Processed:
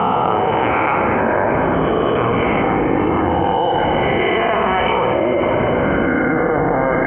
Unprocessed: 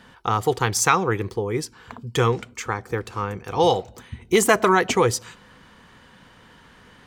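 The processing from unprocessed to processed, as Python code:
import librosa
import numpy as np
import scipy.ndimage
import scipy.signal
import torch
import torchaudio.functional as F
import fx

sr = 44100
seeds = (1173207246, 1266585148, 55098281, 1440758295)

p1 = fx.spec_swells(x, sr, rise_s=1.5)
p2 = scipy.signal.sosfilt(scipy.signal.butter(2, 85.0, 'highpass', fs=sr, output='sos'), p1)
p3 = fx.level_steps(p2, sr, step_db=16)
p4 = p2 + (p3 * 10.0 ** (3.0 / 20.0))
p5 = fx.dmg_noise_band(p4, sr, seeds[0], low_hz=170.0, high_hz=260.0, level_db=-27.0)
p6 = scipy.signal.sosfilt(scipy.signal.cheby1(6, 9, 3100.0, 'lowpass', fs=sr, output='sos'), p5)
p7 = p6 + fx.room_flutter(p6, sr, wall_m=11.5, rt60_s=0.49, dry=0)
p8 = fx.rev_plate(p7, sr, seeds[1], rt60_s=3.8, hf_ratio=0.9, predelay_ms=0, drr_db=7.0)
p9 = fx.echo_pitch(p8, sr, ms=144, semitones=-6, count=3, db_per_echo=-3.0)
p10 = fx.env_flatten(p9, sr, amount_pct=100)
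y = p10 * 10.0 ** (-8.5 / 20.0)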